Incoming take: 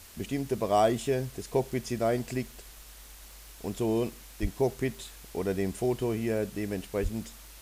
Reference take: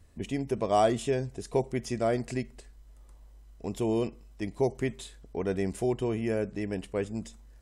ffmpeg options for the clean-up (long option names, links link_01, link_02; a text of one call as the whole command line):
ffmpeg -i in.wav -filter_complex "[0:a]adeclick=threshold=4,asplit=3[link_01][link_02][link_03];[link_01]afade=type=out:start_time=4.41:duration=0.02[link_04];[link_02]highpass=frequency=140:width=0.5412,highpass=frequency=140:width=1.3066,afade=type=in:start_time=4.41:duration=0.02,afade=type=out:start_time=4.53:duration=0.02[link_05];[link_03]afade=type=in:start_time=4.53:duration=0.02[link_06];[link_04][link_05][link_06]amix=inputs=3:normalize=0,asplit=3[link_07][link_08][link_09];[link_07]afade=type=out:start_time=7.02:duration=0.02[link_10];[link_08]highpass=frequency=140:width=0.5412,highpass=frequency=140:width=1.3066,afade=type=in:start_time=7.02:duration=0.02,afade=type=out:start_time=7.14:duration=0.02[link_11];[link_09]afade=type=in:start_time=7.14:duration=0.02[link_12];[link_10][link_11][link_12]amix=inputs=3:normalize=0,afwtdn=0.0032" out.wav